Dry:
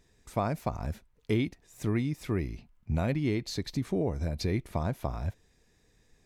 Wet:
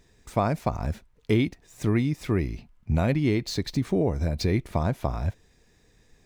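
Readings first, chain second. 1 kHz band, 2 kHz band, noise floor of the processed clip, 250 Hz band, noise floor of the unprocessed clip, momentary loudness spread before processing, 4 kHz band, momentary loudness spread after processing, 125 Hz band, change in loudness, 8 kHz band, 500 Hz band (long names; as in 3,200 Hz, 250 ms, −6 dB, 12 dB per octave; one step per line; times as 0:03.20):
+5.5 dB, +5.5 dB, −62 dBFS, +5.5 dB, −67 dBFS, 8 LU, +5.0 dB, 8 LU, +5.5 dB, +5.5 dB, +4.0 dB, +5.5 dB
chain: running median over 3 samples
level +5.5 dB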